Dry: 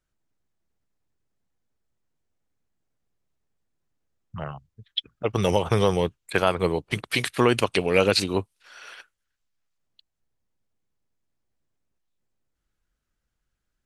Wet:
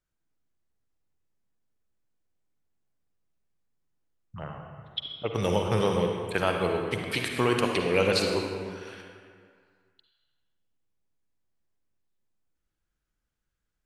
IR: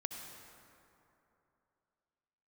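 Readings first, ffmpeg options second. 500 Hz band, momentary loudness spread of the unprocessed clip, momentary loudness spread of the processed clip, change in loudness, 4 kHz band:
-3.0 dB, 16 LU, 17 LU, -3.5 dB, -4.0 dB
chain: -filter_complex "[1:a]atrim=start_sample=2205,asetrate=61740,aresample=44100[a];[0:a][a]afir=irnorm=-1:irlink=0"

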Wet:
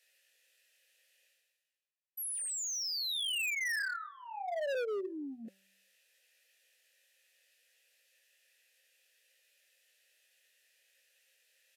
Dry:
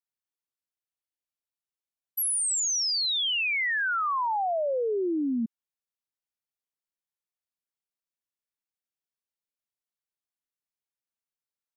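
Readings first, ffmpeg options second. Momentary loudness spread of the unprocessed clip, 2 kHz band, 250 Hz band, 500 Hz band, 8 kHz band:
6 LU, -7.5 dB, -15.0 dB, -8.0 dB, -10.0 dB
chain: -filter_complex "[0:a]aemphasis=mode=production:type=75fm,bandreject=f=193.2:t=h:w=4,bandreject=f=386.4:t=h:w=4,bandreject=f=579.6:t=h:w=4,bandreject=f=772.8:t=h:w=4,bandreject=f=966:t=h:w=4,bandreject=f=1.1592k:t=h:w=4,bandreject=f=1.3524k:t=h:w=4,bandreject=f=1.5456k:t=h:w=4,bandreject=f=1.7388k:t=h:w=4,bandreject=f=1.932k:t=h:w=4,bandreject=f=2.1252k:t=h:w=4,asplit=2[a][b];[b]asoftclip=type=tanh:threshold=-21dB,volume=-10.5dB[c];[a][c]amix=inputs=2:normalize=0,flanger=delay=16:depth=7:speed=0.63,tiltshelf=f=640:g=-9.5,areverse,acompressor=mode=upward:threshold=-12dB:ratio=2.5,areverse,asplit=3[d][e][f];[d]bandpass=f=530:t=q:w=8,volume=0dB[g];[e]bandpass=f=1.84k:t=q:w=8,volume=-6dB[h];[f]bandpass=f=2.48k:t=q:w=8,volume=-9dB[i];[g][h][i]amix=inputs=3:normalize=0,aresample=32000,aresample=44100,volume=33dB,asoftclip=hard,volume=-33dB"

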